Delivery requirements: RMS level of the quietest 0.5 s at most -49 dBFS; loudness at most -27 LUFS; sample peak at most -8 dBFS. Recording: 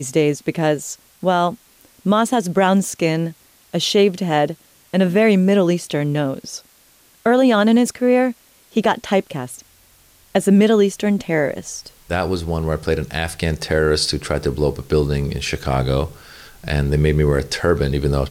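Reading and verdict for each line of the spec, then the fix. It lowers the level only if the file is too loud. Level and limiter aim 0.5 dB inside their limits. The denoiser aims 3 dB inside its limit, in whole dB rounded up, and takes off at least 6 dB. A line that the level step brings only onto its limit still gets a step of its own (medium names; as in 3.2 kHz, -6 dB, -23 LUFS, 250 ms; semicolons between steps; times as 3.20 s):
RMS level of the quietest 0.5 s -53 dBFS: pass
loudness -18.5 LUFS: fail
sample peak -5.5 dBFS: fail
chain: trim -9 dB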